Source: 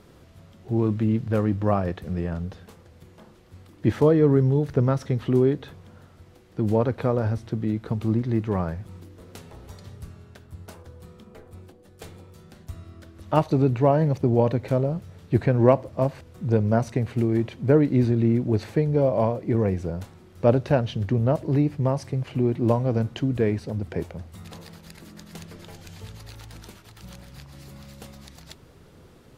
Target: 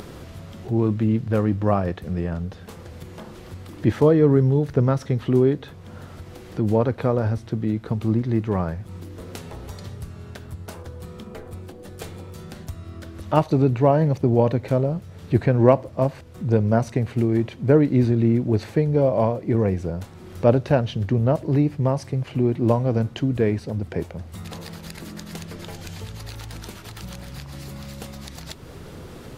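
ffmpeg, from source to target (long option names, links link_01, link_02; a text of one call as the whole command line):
ffmpeg -i in.wav -af "acompressor=mode=upward:threshold=-30dB:ratio=2.5,volume=2dB" out.wav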